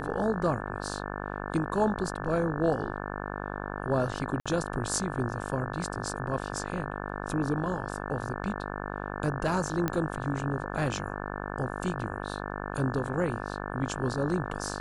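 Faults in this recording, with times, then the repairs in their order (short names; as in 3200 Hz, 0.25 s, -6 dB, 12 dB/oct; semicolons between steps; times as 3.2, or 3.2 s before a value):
buzz 50 Hz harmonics 35 -36 dBFS
4.4–4.46 gap 56 ms
9.88 pop -14 dBFS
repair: de-click; de-hum 50 Hz, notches 35; interpolate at 4.4, 56 ms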